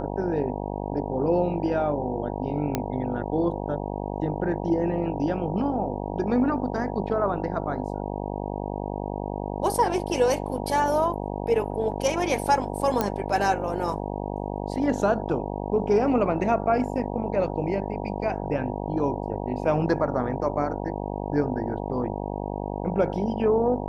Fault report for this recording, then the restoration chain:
buzz 50 Hz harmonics 19 -31 dBFS
2.75 s: pop -10 dBFS
13.01 s: pop -9 dBFS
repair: de-click; de-hum 50 Hz, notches 19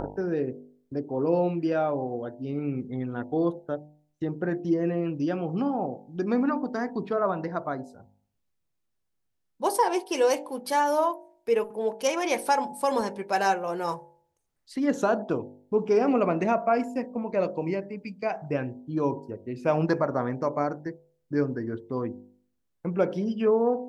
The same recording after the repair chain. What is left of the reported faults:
2.75 s: pop

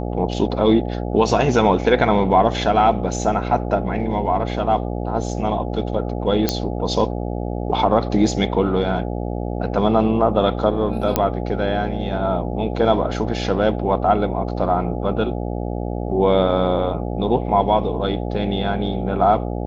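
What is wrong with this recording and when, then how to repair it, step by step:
buzz 60 Hz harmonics 14 -25 dBFS
6.49 s: pop -3 dBFS
11.16 s: pop -2 dBFS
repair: de-click; de-hum 60 Hz, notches 14

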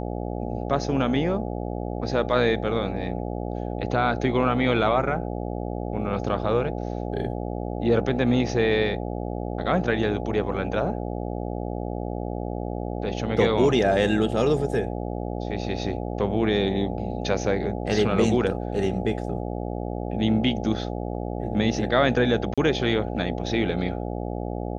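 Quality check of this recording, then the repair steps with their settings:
buzz 60 Hz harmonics 14 -30 dBFS
22.54–22.58 s: dropout 36 ms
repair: de-hum 60 Hz, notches 14; interpolate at 22.54 s, 36 ms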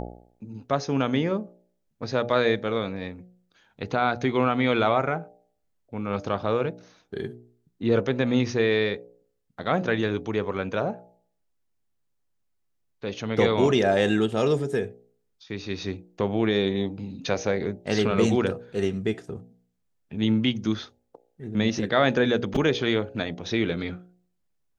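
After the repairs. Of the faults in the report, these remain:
nothing left

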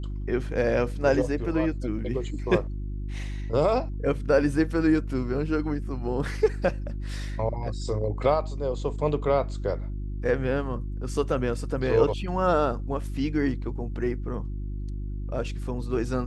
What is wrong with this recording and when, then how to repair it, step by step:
hum 50 Hz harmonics 7 -32 dBFS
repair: de-hum 50 Hz, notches 7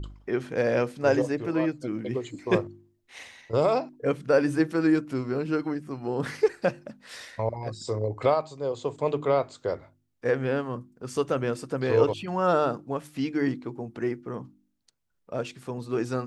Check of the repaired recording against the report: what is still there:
nothing left

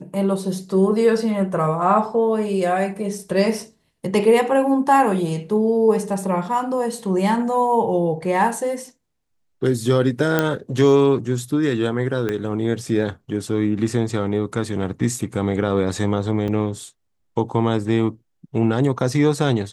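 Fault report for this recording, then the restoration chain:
10.39 s: pop -4 dBFS
12.29 s: pop -12 dBFS
16.48 s: dropout 3.4 ms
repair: de-click; interpolate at 16.48 s, 3.4 ms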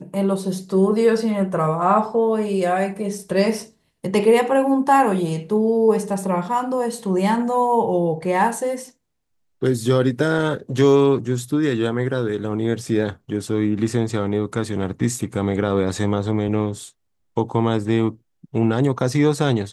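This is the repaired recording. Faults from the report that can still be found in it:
12.29 s: pop

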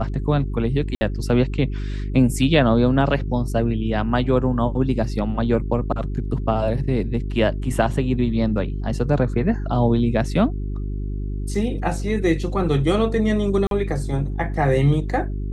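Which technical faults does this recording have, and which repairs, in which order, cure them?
hum 50 Hz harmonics 8 -26 dBFS
0.95–1.01 s: dropout 60 ms
13.67–13.71 s: dropout 42 ms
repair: de-hum 50 Hz, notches 8; interpolate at 0.95 s, 60 ms; interpolate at 13.67 s, 42 ms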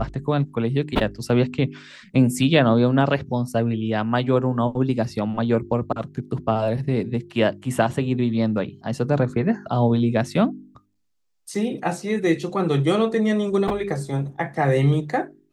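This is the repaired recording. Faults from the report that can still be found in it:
nothing left

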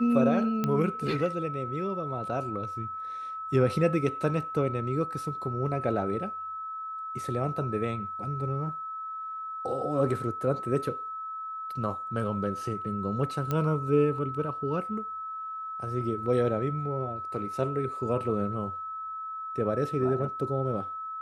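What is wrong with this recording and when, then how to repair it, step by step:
whine 1.3 kHz -34 dBFS
0.64 s: pop -15 dBFS
13.51 s: pop -16 dBFS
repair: de-click; band-stop 1.3 kHz, Q 30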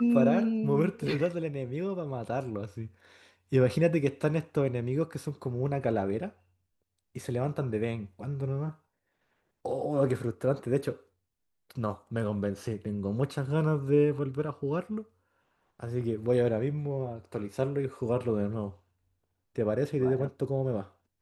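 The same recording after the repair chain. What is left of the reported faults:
nothing left

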